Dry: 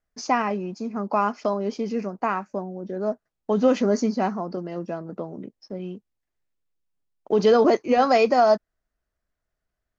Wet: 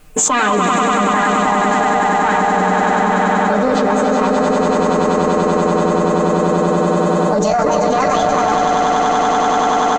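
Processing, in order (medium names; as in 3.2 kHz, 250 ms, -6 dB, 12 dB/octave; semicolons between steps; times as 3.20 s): peaking EQ 1.5 kHz -6 dB 1.6 oct; comb 6.6 ms, depth 77%; de-hum 45.3 Hz, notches 13; on a send: echo with a slow build-up 96 ms, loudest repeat 8, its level -5.5 dB; on the sum: dynamic bell 230 Hz, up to +4 dB, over -32 dBFS, Q 1.9; formant shift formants +6 st; band-stop 640 Hz, Q 12; Chebyshev shaper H 4 -19 dB, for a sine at 0 dBFS; level flattener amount 100%; trim -3.5 dB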